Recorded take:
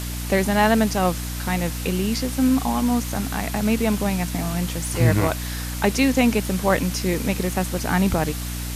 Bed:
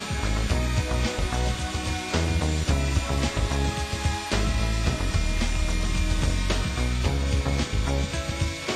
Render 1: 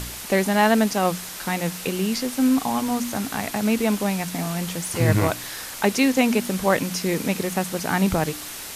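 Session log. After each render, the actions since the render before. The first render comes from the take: de-hum 60 Hz, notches 5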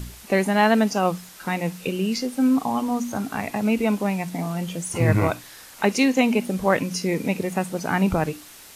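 noise print and reduce 10 dB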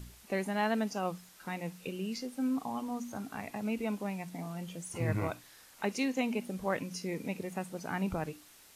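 trim -13 dB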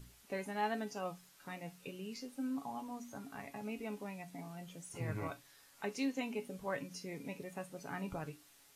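feedback comb 140 Hz, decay 0.15 s, harmonics all, mix 80%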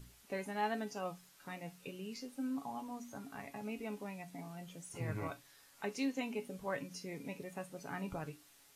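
no audible change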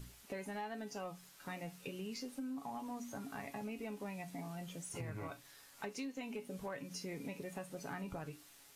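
compression 10:1, threshold -43 dBFS, peak gain reduction 13 dB; waveshaping leveller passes 1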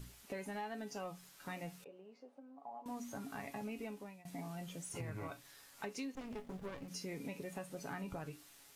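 1.84–2.86 s: band-pass filter 660 Hz, Q 2.7; 3.82–4.25 s: fade out, to -20.5 dB; 6.15–6.88 s: sliding maximum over 33 samples

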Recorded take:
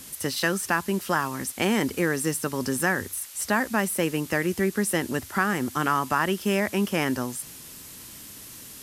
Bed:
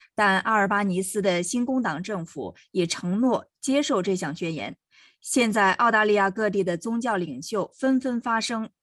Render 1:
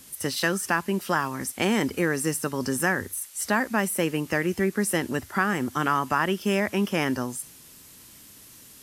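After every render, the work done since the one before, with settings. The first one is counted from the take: noise print and reduce 6 dB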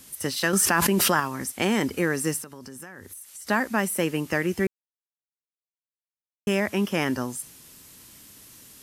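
0.53–1.20 s: level flattener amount 100%; 2.42–3.47 s: compression 8:1, threshold -38 dBFS; 4.67–6.47 s: mute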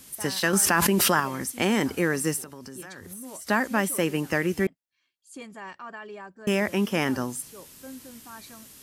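add bed -20.5 dB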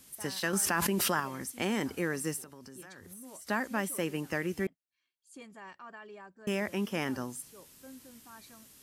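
trim -8 dB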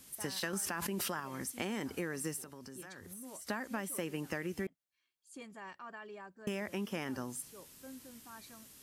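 compression 6:1, threshold -34 dBFS, peak gain reduction 10 dB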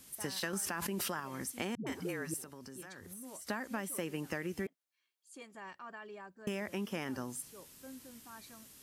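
1.75–2.34 s: phase dispersion highs, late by 116 ms, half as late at 320 Hz; 4.66–5.55 s: high-pass 300 Hz

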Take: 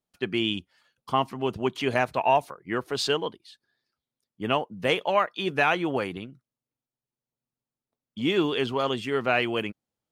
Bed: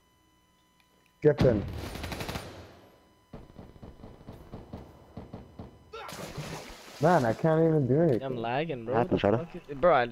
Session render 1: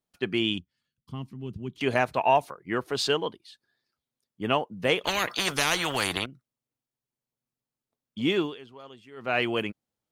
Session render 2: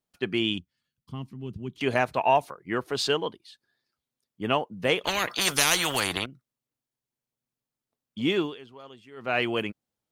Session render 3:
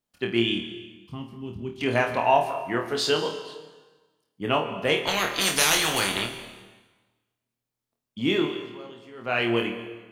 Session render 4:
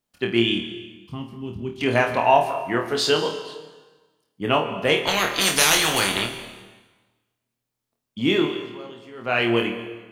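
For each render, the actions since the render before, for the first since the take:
0.58–1.81 s: FFT filter 170 Hz 0 dB, 340 Hz -10 dB, 700 Hz -25 dB, 3.6 kHz -14 dB; 5.04–6.26 s: spectrum-flattening compressor 4:1; 8.32–9.42 s: dip -20 dB, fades 0.26 s
5.41–6.00 s: treble shelf 5 kHz +10.5 dB
flutter echo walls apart 4.4 m, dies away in 0.31 s; plate-style reverb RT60 1.3 s, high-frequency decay 0.9×, pre-delay 110 ms, DRR 10.5 dB
trim +3.5 dB

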